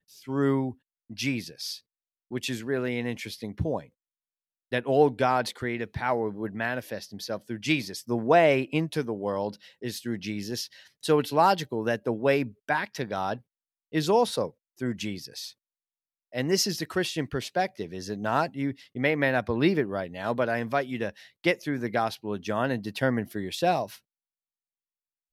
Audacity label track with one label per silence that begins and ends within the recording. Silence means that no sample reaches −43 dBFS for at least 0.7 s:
3.850000	4.720000	silence
15.510000	16.330000	silence